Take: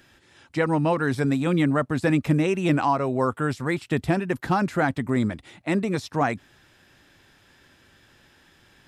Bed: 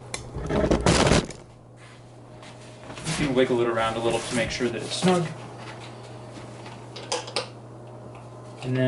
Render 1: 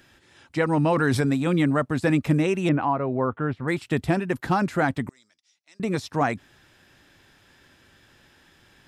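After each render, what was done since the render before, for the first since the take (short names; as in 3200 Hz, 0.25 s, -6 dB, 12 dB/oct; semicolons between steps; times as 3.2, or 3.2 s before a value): 0.77–1.21 fast leveller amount 70%; 2.69–3.68 air absorption 470 m; 5.09–5.8 band-pass 5600 Hz, Q 7.4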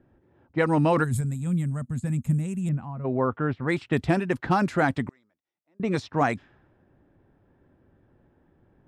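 low-pass opened by the level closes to 580 Hz, open at -19 dBFS; 1.04–3.05 spectral gain 250–6400 Hz -18 dB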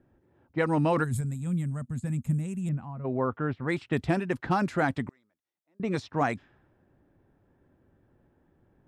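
gain -3.5 dB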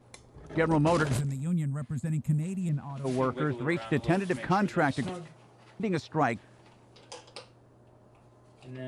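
add bed -17 dB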